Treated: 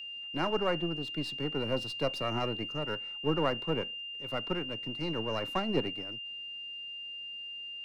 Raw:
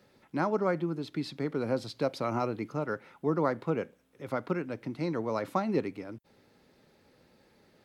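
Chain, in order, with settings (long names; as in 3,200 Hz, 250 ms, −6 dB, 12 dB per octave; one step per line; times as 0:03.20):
gain on one half-wave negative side −7 dB
steady tone 2,800 Hz −37 dBFS
multiband upward and downward expander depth 40%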